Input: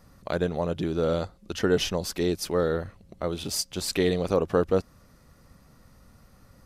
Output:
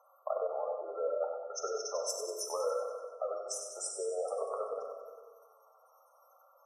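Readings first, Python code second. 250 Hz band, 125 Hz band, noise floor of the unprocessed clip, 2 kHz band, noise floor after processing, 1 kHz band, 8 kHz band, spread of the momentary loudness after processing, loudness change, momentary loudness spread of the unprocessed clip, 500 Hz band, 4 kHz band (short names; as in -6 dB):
under -30 dB, under -40 dB, -57 dBFS, under -20 dB, -65 dBFS, -5.0 dB, -3.5 dB, 7 LU, -9.5 dB, 8 LU, -8.5 dB, -14.0 dB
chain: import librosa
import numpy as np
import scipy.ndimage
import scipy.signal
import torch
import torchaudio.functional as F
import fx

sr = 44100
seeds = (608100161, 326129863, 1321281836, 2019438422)

p1 = scipy.signal.sosfilt(scipy.signal.butter(6, 550.0, 'highpass', fs=sr, output='sos'), x)
p2 = fx.spec_gate(p1, sr, threshold_db=-10, keep='strong')
p3 = fx.high_shelf(p2, sr, hz=6600.0, db=6.5)
p4 = fx.over_compress(p3, sr, threshold_db=-32.0, ratio=-0.5)
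p5 = fx.brickwall_bandstop(p4, sr, low_hz=1400.0, high_hz=5200.0)
p6 = p5 + fx.echo_feedback(p5, sr, ms=95, feedback_pct=56, wet_db=-8.0, dry=0)
p7 = fx.rev_plate(p6, sr, seeds[0], rt60_s=1.5, hf_ratio=0.6, predelay_ms=0, drr_db=3.0)
y = F.gain(torch.from_numpy(p7), -1.5).numpy()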